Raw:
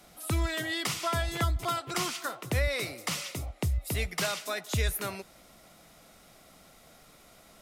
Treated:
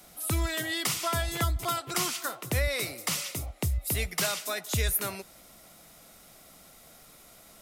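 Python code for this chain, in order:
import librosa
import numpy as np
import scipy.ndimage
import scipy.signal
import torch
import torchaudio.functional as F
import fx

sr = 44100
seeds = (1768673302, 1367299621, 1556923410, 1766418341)

y = fx.high_shelf(x, sr, hz=8000.0, db=10.5)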